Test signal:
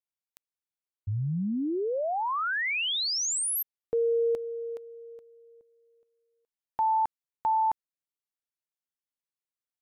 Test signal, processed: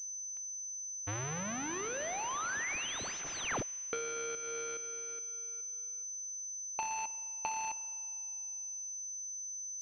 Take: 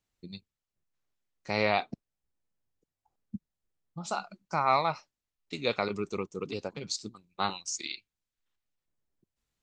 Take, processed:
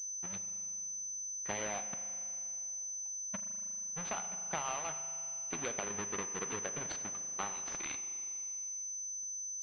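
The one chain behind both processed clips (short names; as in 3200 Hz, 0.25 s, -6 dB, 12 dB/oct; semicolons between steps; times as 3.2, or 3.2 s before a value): half-waves squared off; tilt shelf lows -6 dB, about 700 Hz; compressor 12:1, threshold -27 dBFS; spring tank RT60 2.7 s, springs 39 ms, chirp 55 ms, DRR 9.5 dB; pulse-width modulation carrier 6100 Hz; gain -6.5 dB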